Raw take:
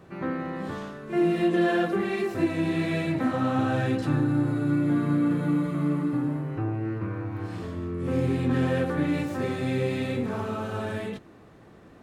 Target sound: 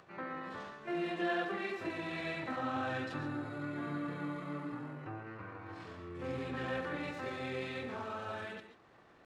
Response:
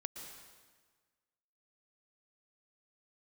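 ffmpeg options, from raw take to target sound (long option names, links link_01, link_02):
-filter_complex "[0:a]atempo=1.3,acompressor=mode=upward:threshold=-46dB:ratio=2.5,acrossover=split=570 6500:gain=0.251 1 0.2[link_01][link_02][link_03];[link_01][link_02][link_03]amix=inputs=3:normalize=0[link_04];[1:a]atrim=start_sample=2205,atrim=end_sample=6615[link_05];[link_04][link_05]afir=irnorm=-1:irlink=0,volume=-2dB"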